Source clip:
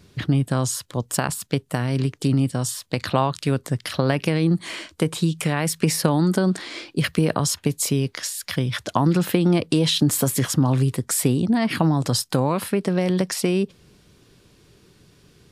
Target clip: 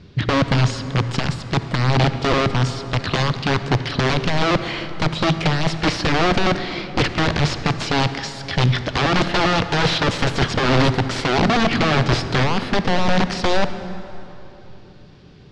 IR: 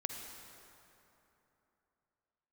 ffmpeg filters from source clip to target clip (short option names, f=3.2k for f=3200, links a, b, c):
-filter_complex "[0:a]aeval=exprs='(mod(7.08*val(0)+1,2)-1)/7.08':c=same,lowpass=f=4.9k:w=0.5412,lowpass=f=4.9k:w=1.3066,asplit=2[a][b];[1:a]atrim=start_sample=2205,lowshelf=f=400:g=9[c];[b][c]afir=irnorm=-1:irlink=0,volume=-2.5dB[d];[a][d]amix=inputs=2:normalize=0"